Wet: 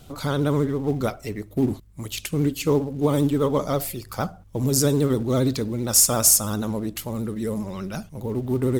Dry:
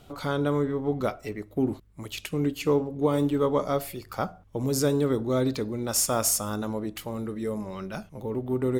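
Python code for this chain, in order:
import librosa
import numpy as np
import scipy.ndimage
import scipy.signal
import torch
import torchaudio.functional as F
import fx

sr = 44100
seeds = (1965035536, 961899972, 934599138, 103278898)

p1 = fx.bass_treble(x, sr, bass_db=6, treble_db=8)
p2 = fx.quant_float(p1, sr, bits=2)
p3 = p1 + (p2 * 10.0 ** (-10.5 / 20.0))
p4 = fx.vibrato(p3, sr, rate_hz=15.0, depth_cents=76.0)
y = p4 * 10.0 ** (-1.0 / 20.0)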